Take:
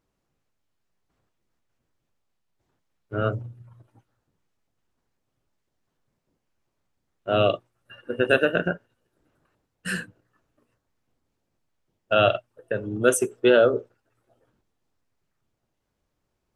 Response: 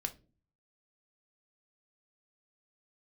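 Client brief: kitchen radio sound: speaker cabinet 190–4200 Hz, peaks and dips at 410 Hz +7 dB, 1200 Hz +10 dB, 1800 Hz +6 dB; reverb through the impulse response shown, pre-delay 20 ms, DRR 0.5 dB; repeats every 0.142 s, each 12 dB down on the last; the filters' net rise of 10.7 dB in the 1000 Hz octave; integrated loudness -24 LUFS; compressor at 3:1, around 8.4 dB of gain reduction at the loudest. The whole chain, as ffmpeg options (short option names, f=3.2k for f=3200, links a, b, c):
-filter_complex "[0:a]equalizer=f=1k:t=o:g=8,acompressor=threshold=-22dB:ratio=3,aecho=1:1:142|284|426:0.251|0.0628|0.0157,asplit=2[a][b];[1:a]atrim=start_sample=2205,adelay=20[c];[b][c]afir=irnorm=-1:irlink=0,volume=-0.5dB[d];[a][d]amix=inputs=2:normalize=0,highpass=190,equalizer=f=410:t=q:w=4:g=7,equalizer=f=1.2k:t=q:w=4:g=10,equalizer=f=1.8k:t=q:w=4:g=6,lowpass=f=4.2k:w=0.5412,lowpass=f=4.2k:w=1.3066,volume=-2dB"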